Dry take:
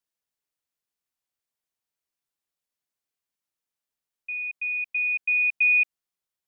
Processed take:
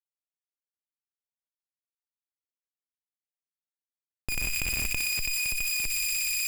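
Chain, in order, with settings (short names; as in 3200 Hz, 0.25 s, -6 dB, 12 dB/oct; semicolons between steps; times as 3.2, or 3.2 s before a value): 4.32–4.9 bell 2300 Hz -13 dB 0.26 oct; chorus voices 6, 0.8 Hz, delay 17 ms, depth 3.4 ms; Schmitt trigger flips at -40.5 dBFS; added harmonics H 3 -10 dB, 6 -7 dB, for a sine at -28 dBFS; thin delay 61 ms, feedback 78%, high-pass 2200 Hz, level -5.5 dB; on a send at -16.5 dB: reverb RT60 1.4 s, pre-delay 4 ms; on the sum: fast leveller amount 100%; gain +5 dB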